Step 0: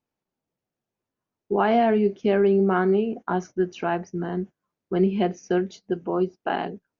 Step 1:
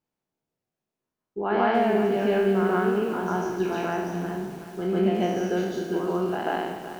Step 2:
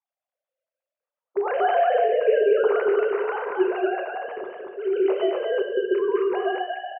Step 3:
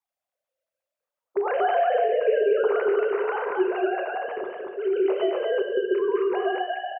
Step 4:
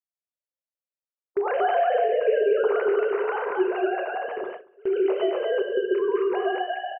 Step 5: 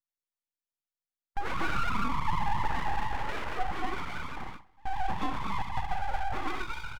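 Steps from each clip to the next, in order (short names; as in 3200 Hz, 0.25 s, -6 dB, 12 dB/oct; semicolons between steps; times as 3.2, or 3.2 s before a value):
spectral trails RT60 0.96 s; reverse echo 0.144 s -3.5 dB; lo-fi delay 0.373 s, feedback 55%, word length 6-bit, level -11 dB; gain -5 dB
sine-wave speech; echo 0.231 s -3.5 dB; on a send at -7 dB: reverb RT60 0.70 s, pre-delay 3 ms
compressor 1.5:1, threshold -27 dBFS, peak gain reduction 5 dB; gain +2 dB
gate with hold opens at -23 dBFS
full-wave rectifier; gain -4.5 dB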